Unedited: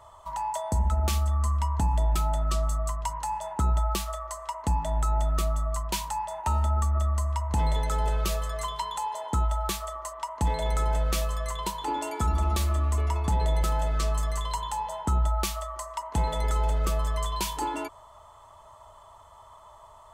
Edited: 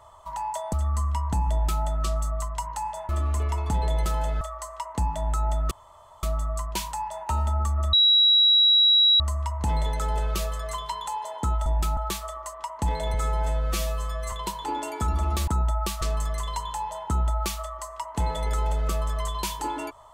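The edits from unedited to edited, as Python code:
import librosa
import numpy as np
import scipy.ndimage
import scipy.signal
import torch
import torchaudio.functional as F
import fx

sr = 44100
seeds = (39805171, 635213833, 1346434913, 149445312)

y = fx.edit(x, sr, fx.cut(start_s=0.73, length_s=0.47),
    fx.duplicate(start_s=1.99, length_s=0.31, to_s=9.56),
    fx.swap(start_s=3.56, length_s=0.54, other_s=12.67, other_length_s=1.32),
    fx.insert_room_tone(at_s=5.4, length_s=0.52),
    fx.insert_tone(at_s=7.1, length_s=1.27, hz=3880.0, db=-14.5),
    fx.stretch_span(start_s=10.73, length_s=0.79, factor=1.5), tone=tone)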